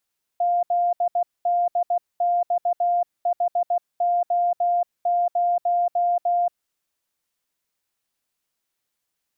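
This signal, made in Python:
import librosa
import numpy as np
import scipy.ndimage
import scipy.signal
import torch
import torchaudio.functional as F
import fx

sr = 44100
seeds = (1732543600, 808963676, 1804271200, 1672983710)

y = fx.morse(sr, text='ZDXHO0', wpm=16, hz=701.0, level_db=-17.5)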